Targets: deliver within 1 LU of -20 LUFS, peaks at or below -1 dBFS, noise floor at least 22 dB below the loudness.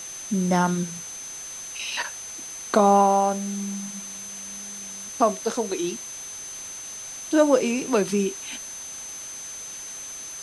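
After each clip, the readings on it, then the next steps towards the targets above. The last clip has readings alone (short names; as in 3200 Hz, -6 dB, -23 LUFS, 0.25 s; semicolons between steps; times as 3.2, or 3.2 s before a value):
steady tone 6200 Hz; tone level -35 dBFS; noise floor -37 dBFS; noise floor target -48 dBFS; loudness -25.5 LUFS; peak -6.0 dBFS; loudness target -20.0 LUFS
-> notch 6200 Hz, Q 30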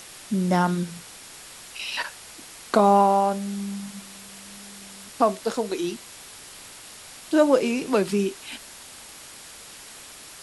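steady tone none; noise floor -44 dBFS; noise floor target -46 dBFS
-> denoiser 6 dB, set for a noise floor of -44 dBFS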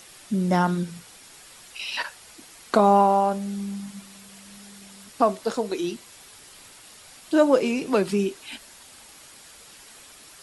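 noise floor -48 dBFS; loudness -23.5 LUFS; peak -6.0 dBFS; loudness target -20.0 LUFS
-> gain +3.5 dB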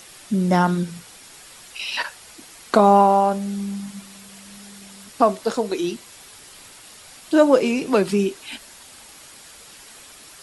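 loudness -20.0 LUFS; peak -2.5 dBFS; noise floor -45 dBFS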